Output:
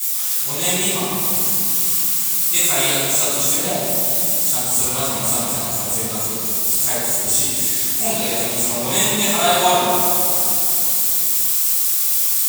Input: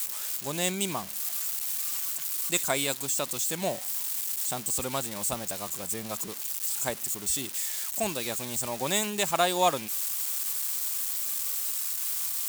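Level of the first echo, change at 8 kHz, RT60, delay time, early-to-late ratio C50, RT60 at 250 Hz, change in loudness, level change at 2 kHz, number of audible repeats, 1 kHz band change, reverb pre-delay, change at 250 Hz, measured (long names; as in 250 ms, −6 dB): no echo audible, +12.5 dB, 3.0 s, no echo audible, −5.0 dB, 4.4 s, +13.0 dB, +9.5 dB, no echo audible, +10.0 dB, 8 ms, +10.0 dB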